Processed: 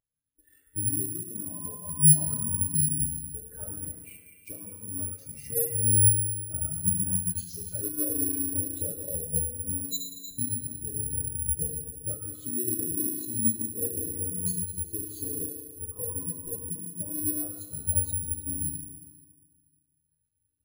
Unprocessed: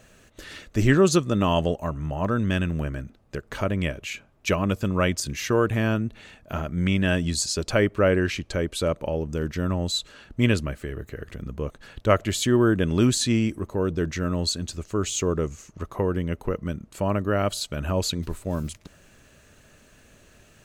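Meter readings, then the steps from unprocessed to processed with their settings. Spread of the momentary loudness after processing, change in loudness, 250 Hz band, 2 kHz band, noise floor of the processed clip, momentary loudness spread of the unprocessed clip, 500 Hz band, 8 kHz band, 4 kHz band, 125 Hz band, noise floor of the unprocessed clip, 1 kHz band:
14 LU, −2.0 dB, −11.5 dB, below −30 dB, −75 dBFS, 14 LU, −17.5 dB, +7.5 dB, −18.0 dB, −7.0 dB, −56 dBFS, below −25 dB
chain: downward compressor 16 to 1, threshold −30 dBFS, peak gain reduction 18.5 dB
on a send: echo through a band-pass that steps 106 ms, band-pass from 1,200 Hz, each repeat 0.7 octaves, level −3.5 dB
on the sum: feedback delay network reverb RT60 3.8 s, high-frequency decay 0.8×, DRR −3.5 dB
bad sample-rate conversion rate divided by 4×, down none, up zero stuff
every bin expanded away from the loudest bin 2.5 to 1

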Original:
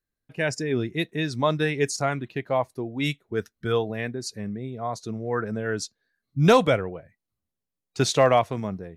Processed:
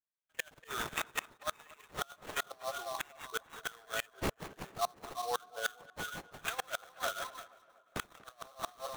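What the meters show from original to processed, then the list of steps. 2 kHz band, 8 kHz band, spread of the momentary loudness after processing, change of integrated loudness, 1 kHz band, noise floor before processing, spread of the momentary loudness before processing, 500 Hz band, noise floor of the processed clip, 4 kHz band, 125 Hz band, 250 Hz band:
−8.5 dB, −8.0 dB, 9 LU, −14.5 dB, −11.5 dB, below −85 dBFS, 14 LU, −19.5 dB, −70 dBFS, −9.0 dB, −24.5 dB, −23.0 dB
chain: feedback delay that plays each chunk backwards 174 ms, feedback 60%, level −11 dB
noise reduction from a noise print of the clip's start 15 dB
high-pass filter 860 Hz 24 dB per octave
noise gate −55 dBFS, range −9 dB
in parallel at +2.5 dB: brickwall limiter −20.5 dBFS, peak gain reduction 10 dB
on the sum: compressor whose output falls as the input rises −26 dBFS, ratio −0.5
phaser with its sweep stopped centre 1,400 Hz, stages 8
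gate with flip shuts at −22 dBFS, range −29 dB
sample-rate reduction 4,900 Hz, jitter 20%
on a send: tape delay 239 ms, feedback 65%, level −19 dB, low-pass 2,000 Hz
on the sum: level +1 dB

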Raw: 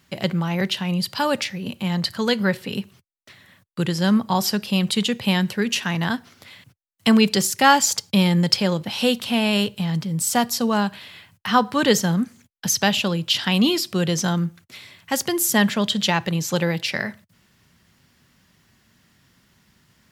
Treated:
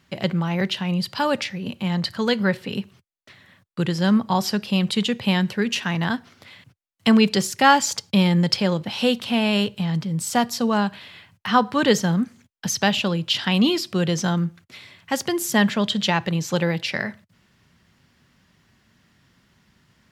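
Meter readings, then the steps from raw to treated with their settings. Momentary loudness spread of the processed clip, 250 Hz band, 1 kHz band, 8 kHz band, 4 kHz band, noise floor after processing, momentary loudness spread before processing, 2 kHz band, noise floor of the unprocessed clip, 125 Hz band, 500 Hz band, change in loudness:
9 LU, 0.0 dB, 0.0 dB, −5.0 dB, −2.0 dB, −63 dBFS, 10 LU, −0.5 dB, −62 dBFS, 0.0 dB, 0.0 dB, −0.5 dB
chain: high-shelf EQ 7,800 Hz −11.5 dB

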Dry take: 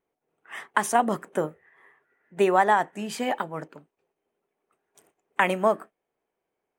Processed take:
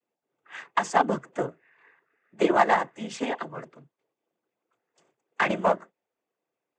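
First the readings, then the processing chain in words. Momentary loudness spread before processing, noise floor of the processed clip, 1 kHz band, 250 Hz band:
13 LU, below −85 dBFS, −1.0 dB, 0.0 dB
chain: cochlear-implant simulation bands 16
harmonic generator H 7 −29 dB, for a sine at −6.5 dBFS

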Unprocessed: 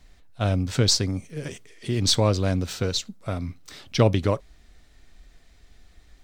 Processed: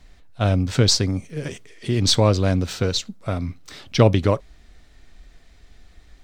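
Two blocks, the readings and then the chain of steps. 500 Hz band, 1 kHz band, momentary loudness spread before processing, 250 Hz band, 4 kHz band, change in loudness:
+4.0 dB, +4.0 dB, 15 LU, +4.0 dB, +2.5 dB, +3.5 dB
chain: high-shelf EQ 7,100 Hz −5.5 dB
level +4 dB

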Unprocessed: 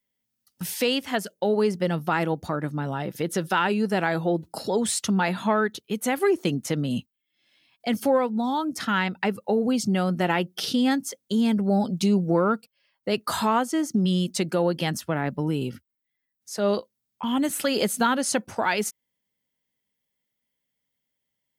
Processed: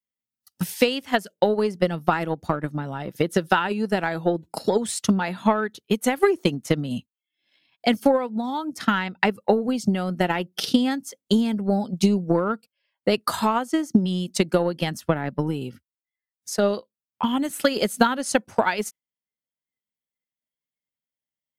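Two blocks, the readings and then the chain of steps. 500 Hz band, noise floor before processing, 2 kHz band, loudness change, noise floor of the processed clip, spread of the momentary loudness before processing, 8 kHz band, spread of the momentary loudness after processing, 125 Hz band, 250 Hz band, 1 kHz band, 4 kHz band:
+2.0 dB, −81 dBFS, +1.5 dB, +1.5 dB, below −85 dBFS, 7 LU, −2.0 dB, 8 LU, +0.5 dB, +1.0 dB, +1.5 dB, +1.0 dB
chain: noise reduction from a noise print of the clip's start 11 dB
transient designer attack +11 dB, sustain −3 dB
level −2.5 dB

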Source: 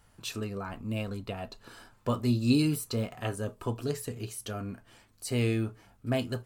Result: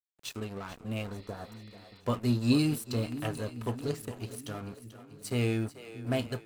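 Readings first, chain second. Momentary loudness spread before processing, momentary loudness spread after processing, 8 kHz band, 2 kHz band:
16 LU, 18 LU, −3.5 dB, −1.0 dB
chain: dead-zone distortion −43 dBFS
echo with a time of its own for lows and highs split 360 Hz, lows 630 ms, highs 438 ms, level −13 dB
healed spectral selection 0:01.16–0:01.98, 1,800–5,400 Hz before

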